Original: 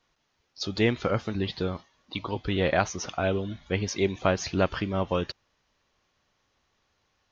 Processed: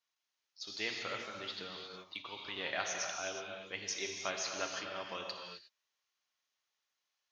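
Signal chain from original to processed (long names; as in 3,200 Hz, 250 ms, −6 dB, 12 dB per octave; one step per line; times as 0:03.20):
high-shelf EQ 3,000 Hz −8.5 dB
reverb whose tail is shaped and stops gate 390 ms flat, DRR 1.5 dB
noise gate −34 dBFS, range −7 dB
first difference
0:01.58–0:02.56: multiband upward and downward compressor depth 70%
level +4.5 dB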